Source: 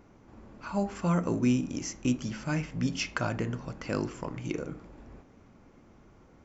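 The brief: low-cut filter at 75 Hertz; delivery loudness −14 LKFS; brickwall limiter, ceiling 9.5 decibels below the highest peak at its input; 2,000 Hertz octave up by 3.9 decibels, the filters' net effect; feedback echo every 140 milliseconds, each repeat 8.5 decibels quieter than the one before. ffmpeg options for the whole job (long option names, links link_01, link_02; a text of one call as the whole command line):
ffmpeg -i in.wav -af "highpass=75,equalizer=frequency=2000:width_type=o:gain=5.5,alimiter=limit=-20.5dB:level=0:latency=1,aecho=1:1:140|280|420|560:0.376|0.143|0.0543|0.0206,volume=19dB" out.wav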